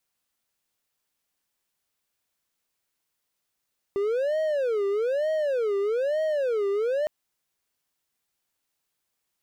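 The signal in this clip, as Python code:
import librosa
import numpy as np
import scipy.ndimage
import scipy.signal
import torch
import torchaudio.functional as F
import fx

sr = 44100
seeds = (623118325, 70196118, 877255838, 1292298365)

y = fx.siren(sr, length_s=3.11, kind='wail', low_hz=396.0, high_hz=630.0, per_s=1.1, wave='triangle', level_db=-20.5)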